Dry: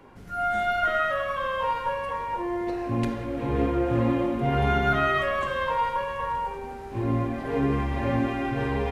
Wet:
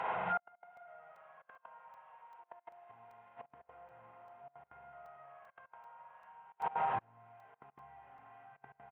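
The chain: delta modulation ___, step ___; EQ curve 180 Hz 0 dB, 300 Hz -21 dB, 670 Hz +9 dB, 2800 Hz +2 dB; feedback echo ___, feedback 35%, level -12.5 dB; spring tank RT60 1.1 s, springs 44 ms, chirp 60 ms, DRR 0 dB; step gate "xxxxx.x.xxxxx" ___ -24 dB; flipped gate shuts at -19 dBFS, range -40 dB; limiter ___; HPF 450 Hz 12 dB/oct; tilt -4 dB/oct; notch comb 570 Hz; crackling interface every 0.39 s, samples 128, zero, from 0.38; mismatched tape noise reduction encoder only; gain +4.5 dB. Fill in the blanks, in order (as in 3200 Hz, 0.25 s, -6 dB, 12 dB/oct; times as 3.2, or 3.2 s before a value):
16 kbps, -38.5 dBFS, 0.793 s, 191 bpm, -29 dBFS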